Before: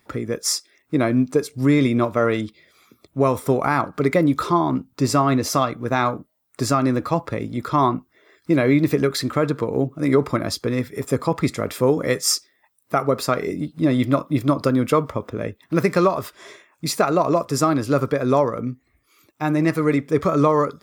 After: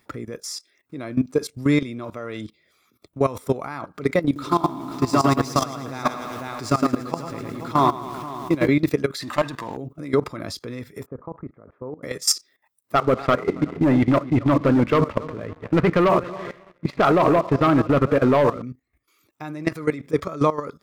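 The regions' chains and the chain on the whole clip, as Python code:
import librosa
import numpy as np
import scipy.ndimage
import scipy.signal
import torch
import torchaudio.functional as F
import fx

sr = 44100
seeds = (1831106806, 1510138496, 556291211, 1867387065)

y = fx.chain(x, sr, fx.median_filter(points=3),
    fx.echo_single(ms=495, db=-9.5),
    fx.echo_crushed(ms=109, feedback_pct=55, bits=7, wet_db=-3.5), at=(4.25, 8.68))
y = fx.chain(y, sr, fx.bass_treble(bass_db=-13, treble_db=-2),
    fx.comb(ms=1.1, depth=0.76),
    fx.leveller(passes=2), at=(9.22, 9.77))
y = fx.chain(y, sr, fx.lowpass(hz=1400.0, slope=24),
    fx.level_steps(step_db=20), at=(11.06, 12.03))
y = fx.chain(y, sr, fx.reverse_delay_fb(ms=137, feedback_pct=54, wet_db=-12.5),
    fx.lowpass(hz=2400.0, slope=24),
    fx.leveller(passes=2), at=(12.95, 18.62))
y = fx.dynamic_eq(y, sr, hz=4200.0, q=0.74, threshold_db=-37.0, ratio=4.0, max_db=4)
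y = fx.level_steps(y, sr, step_db=16)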